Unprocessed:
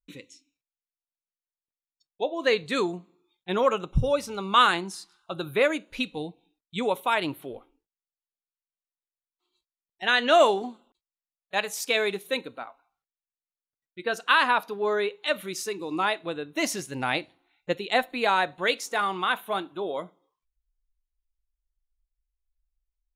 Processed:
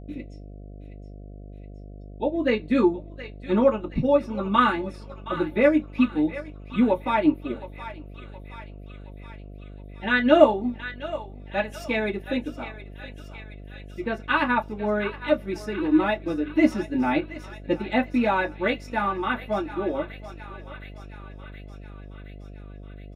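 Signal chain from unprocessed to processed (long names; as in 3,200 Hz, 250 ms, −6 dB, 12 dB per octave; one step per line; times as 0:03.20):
comb filter 3.5 ms, depth 34%
feedback echo with a high-pass in the loop 720 ms, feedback 71%, high-pass 1,000 Hz, level −11 dB
transient designer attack −1 dB, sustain −6 dB
convolution reverb, pre-delay 3 ms, DRR −6.5 dB
hum with harmonics 50 Hz, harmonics 14, −26 dBFS −6 dB per octave
level −15 dB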